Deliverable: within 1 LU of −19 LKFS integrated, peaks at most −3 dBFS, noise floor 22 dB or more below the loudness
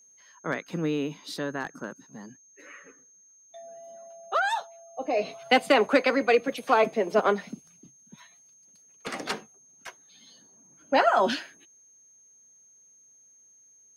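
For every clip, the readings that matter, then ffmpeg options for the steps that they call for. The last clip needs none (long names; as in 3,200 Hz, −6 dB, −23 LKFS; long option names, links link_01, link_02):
interfering tone 6,400 Hz; level of the tone −55 dBFS; integrated loudness −26.0 LKFS; sample peak −7.0 dBFS; target loudness −19.0 LKFS
→ -af "bandreject=frequency=6400:width=30"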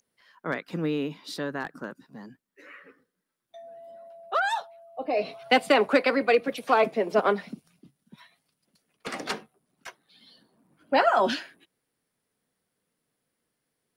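interfering tone none found; integrated loudness −26.0 LKFS; sample peak −7.0 dBFS; target loudness −19.0 LKFS
→ -af "volume=7dB,alimiter=limit=-3dB:level=0:latency=1"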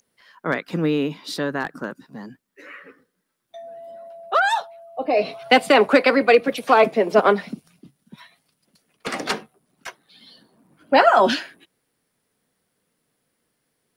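integrated loudness −19.5 LKFS; sample peak −3.0 dBFS; background noise floor −74 dBFS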